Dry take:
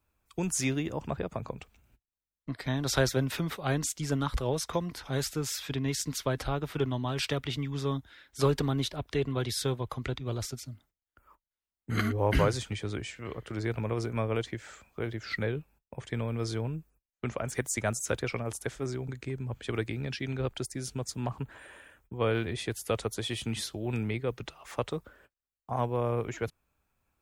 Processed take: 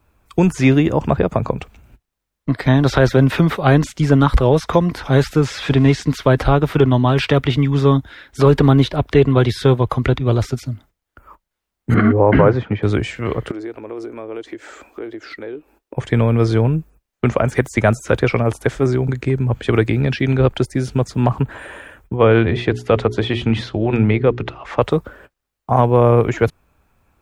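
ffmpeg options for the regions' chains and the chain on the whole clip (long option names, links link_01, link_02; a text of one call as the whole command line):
ffmpeg -i in.wav -filter_complex "[0:a]asettb=1/sr,asplit=3[link_01][link_02][link_03];[link_01]atrim=end=5.454[link_04];[link_02]atrim=start=5.45:end=6.03,asetpts=PTS-STARTPTS,afade=type=in:duration=0.004:curve=qsin,afade=type=out:start_time=0.576:duration=0.004:curve=qsin,aeval=exprs='val(0)+0.5*0.0075*sgn(val(0))':channel_layout=same,lowpass=8300[link_05];[link_03]atrim=start=6.026[link_06];[link_04][link_05]acrossfade=duration=0.004:curve1=hsin:curve2=qsin[link_07];[link_07][link_06]acrossfade=duration=0.004:curve1=qsin:curve2=hsin,asettb=1/sr,asplit=3[link_08][link_09][link_10];[link_08]atrim=end=11.944[link_11];[link_09]atrim=start=11.94:end=12.83,asetpts=PTS-STARTPTS,afade=type=in:duration=0.004:curve=qsin,afade=type=out:start_time=0.886:duration=0.004:curve=qsin,highpass=130,lowpass=2100,aemphasis=mode=reproduction:type=75fm[link_12];[link_10]atrim=start=12.826[link_13];[link_11][link_12]acrossfade=duration=0.004:curve1=hsin:curve2=qsin[link_14];[link_14][link_13]acrossfade=duration=0.004:curve1=qsin:curve2=hsin,asettb=1/sr,asplit=3[link_15][link_16][link_17];[link_15]atrim=end=13.514[link_18];[link_16]atrim=start=13.51:end=15.97,asetpts=PTS-STARTPTS,afade=type=in:duration=0.004:curve=qsin,afade=type=out:start_time=2.456:duration=0.004:curve=qsin,acompressor=threshold=-51dB:ratio=3:attack=3.2:release=140:knee=1:detection=peak,lowshelf=frequency=220:width_type=q:width=3:gain=-11.5[link_19];[link_17]atrim=start=15.966[link_20];[link_18][link_19]acrossfade=duration=0.004:curve1=hsin:curve2=qsin[link_21];[link_21][link_20]acrossfade=duration=0.004:curve1=qsin:curve2=hsin,asettb=1/sr,asplit=3[link_22][link_23][link_24];[link_22]atrim=end=22.164[link_25];[link_23]atrim=start=22.16:end=24.82,asetpts=PTS-STARTPTS,afade=type=in:duration=0.004:curve=qsin,afade=type=out:start_time=2.656:duration=0.004:curve=qsin,lowpass=3700,bandreject=frequency=60:width_type=h:width=6,bandreject=frequency=120:width_type=h:width=6,bandreject=frequency=180:width_type=h:width=6,bandreject=frequency=240:width_type=h:width=6,bandreject=frequency=300:width_type=h:width=6,bandreject=frequency=360:width_type=h:width=6,bandreject=frequency=420:width_type=h:width=6[link_26];[link_24]atrim=start=24.816[link_27];[link_25][link_26]acrossfade=duration=0.004:curve1=hsin:curve2=qsin[link_28];[link_28][link_27]acrossfade=duration=0.004:curve1=qsin:curve2=hsin,acrossover=split=3700[link_29][link_30];[link_30]acompressor=threshold=-48dB:ratio=4:attack=1:release=60[link_31];[link_29][link_31]amix=inputs=2:normalize=0,highshelf=frequency=2600:gain=-8.5,alimiter=level_in=19dB:limit=-1dB:release=50:level=0:latency=1,volume=-1dB" out.wav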